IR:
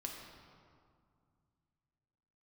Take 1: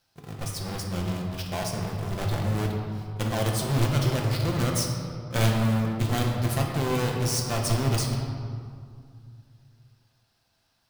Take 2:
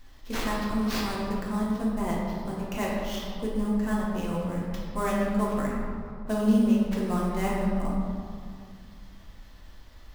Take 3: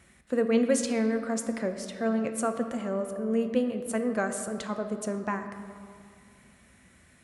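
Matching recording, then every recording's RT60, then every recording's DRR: 1; 2.2, 2.2, 2.3 s; 0.0, -5.0, 6.5 dB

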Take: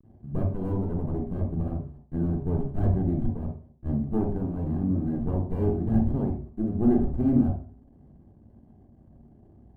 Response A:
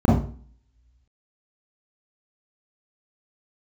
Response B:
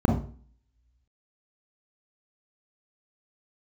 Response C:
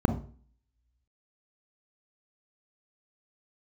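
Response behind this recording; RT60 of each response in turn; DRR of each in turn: B; 0.45, 0.45, 0.45 s; -8.0, -0.5, 6.5 dB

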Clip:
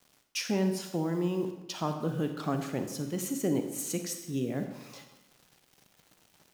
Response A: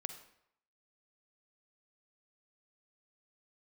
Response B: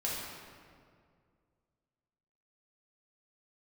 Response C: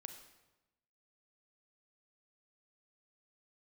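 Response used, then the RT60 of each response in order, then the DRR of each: C; 0.75, 2.1, 1.0 s; 8.0, -6.5, 6.0 dB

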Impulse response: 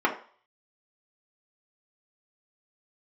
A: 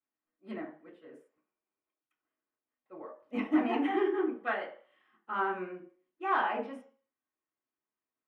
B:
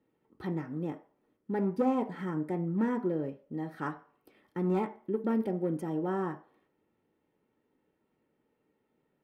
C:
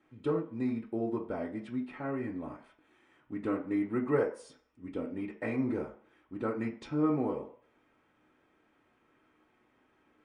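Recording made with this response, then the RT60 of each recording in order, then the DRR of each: C; 0.45, 0.45, 0.45 s; -11.5, 3.5, -3.0 dB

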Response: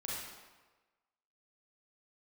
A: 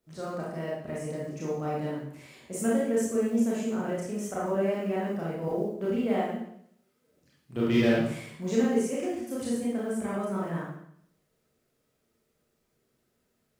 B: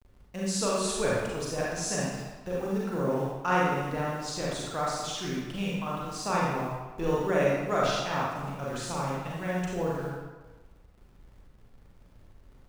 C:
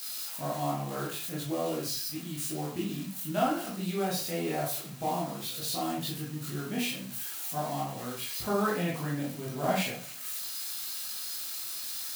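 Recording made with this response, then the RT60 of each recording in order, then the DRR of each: B; 0.70, 1.3, 0.45 s; -7.0, -6.0, -6.0 dB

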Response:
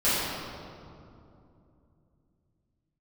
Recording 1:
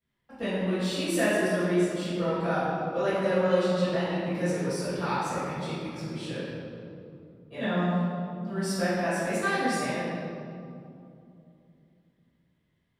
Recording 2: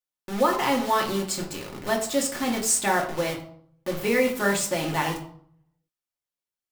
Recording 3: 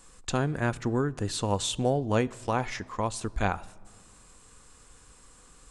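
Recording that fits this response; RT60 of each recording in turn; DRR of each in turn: 1; 2.7, 0.55, 1.8 s; -15.5, -1.0, 16.0 dB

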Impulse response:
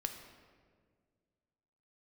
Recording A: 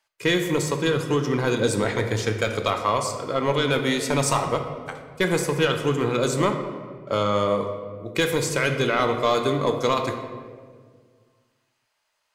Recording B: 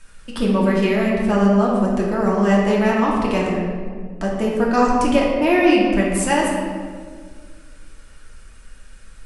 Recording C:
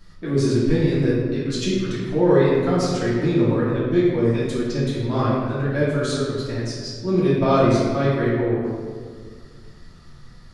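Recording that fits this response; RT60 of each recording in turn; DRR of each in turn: A; 1.8, 1.8, 1.8 s; 5.0, -4.0, -10.0 dB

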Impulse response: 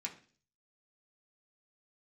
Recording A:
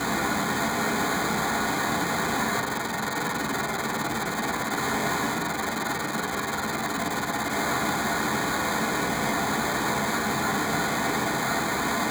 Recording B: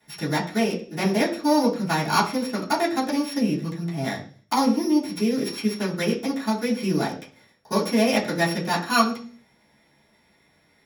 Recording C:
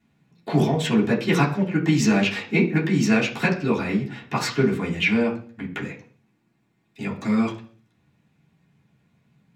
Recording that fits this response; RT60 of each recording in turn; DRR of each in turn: A; 0.45, 0.45, 0.45 s; -2.5, -15.0, -9.5 dB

